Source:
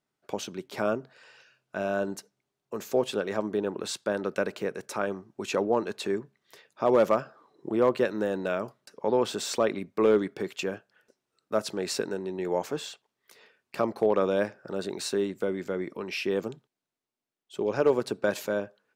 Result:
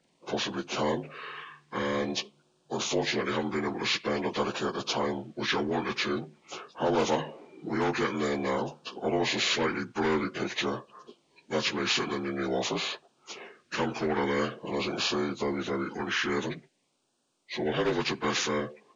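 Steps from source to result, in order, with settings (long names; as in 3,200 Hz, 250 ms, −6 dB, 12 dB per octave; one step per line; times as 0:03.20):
partials spread apart or drawn together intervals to 81%
auto-filter notch sine 0.48 Hz 560–2,100 Hz
every bin compressed towards the loudest bin 2 to 1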